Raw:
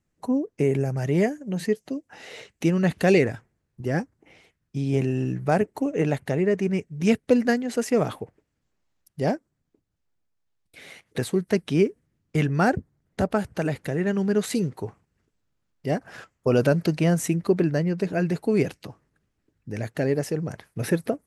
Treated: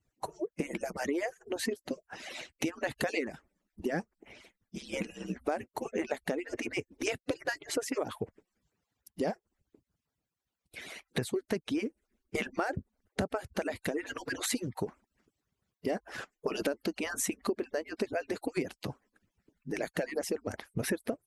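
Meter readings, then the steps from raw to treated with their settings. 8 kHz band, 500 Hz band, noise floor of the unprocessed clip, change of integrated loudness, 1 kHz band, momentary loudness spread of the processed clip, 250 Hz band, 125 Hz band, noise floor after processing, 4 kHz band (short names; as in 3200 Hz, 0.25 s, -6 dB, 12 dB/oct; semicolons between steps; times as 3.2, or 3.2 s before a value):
-1.0 dB, -10.5 dB, -77 dBFS, -11.0 dB, -8.0 dB, 10 LU, -12.5 dB, -18.5 dB, under -85 dBFS, -2.5 dB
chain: median-filter separation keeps percussive; compressor 8:1, threshold -32 dBFS, peak gain reduction 16.5 dB; gain +3 dB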